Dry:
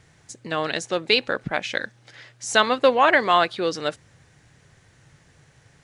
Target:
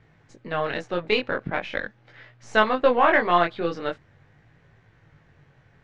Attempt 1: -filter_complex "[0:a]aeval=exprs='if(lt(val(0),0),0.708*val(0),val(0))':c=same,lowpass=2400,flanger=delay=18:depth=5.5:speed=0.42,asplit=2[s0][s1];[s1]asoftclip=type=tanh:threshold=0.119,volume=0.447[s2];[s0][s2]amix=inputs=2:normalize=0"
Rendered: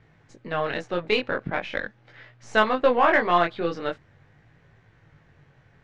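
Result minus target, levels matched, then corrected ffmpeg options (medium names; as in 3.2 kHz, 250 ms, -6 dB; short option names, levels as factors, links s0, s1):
saturation: distortion +9 dB
-filter_complex "[0:a]aeval=exprs='if(lt(val(0),0),0.708*val(0),val(0))':c=same,lowpass=2400,flanger=delay=18:depth=5.5:speed=0.42,asplit=2[s0][s1];[s1]asoftclip=type=tanh:threshold=0.299,volume=0.447[s2];[s0][s2]amix=inputs=2:normalize=0"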